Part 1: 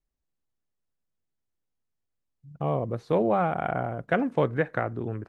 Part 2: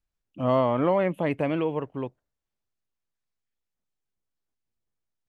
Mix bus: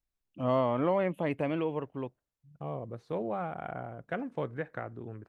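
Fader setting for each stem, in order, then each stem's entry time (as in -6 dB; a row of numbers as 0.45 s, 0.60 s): -10.5 dB, -5.0 dB; 0.00 s, 0.00 s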